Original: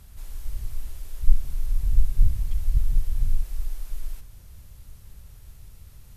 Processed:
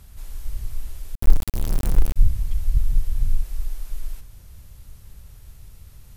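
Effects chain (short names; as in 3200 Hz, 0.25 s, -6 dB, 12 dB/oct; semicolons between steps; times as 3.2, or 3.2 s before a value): 1.15–2.16 sample gate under -23 dBFS; gain +2 dB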